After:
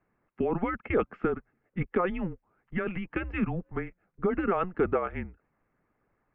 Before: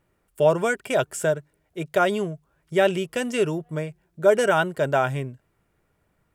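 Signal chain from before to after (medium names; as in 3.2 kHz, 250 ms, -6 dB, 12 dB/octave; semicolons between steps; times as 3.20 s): peak limiter -16.5 dBFS, peak gain reduction 10 dB; mistuned SSB -180 Hz 190–2500 Hz; harmonic-percussive split harmonic -9 dB; trim +1.5 dB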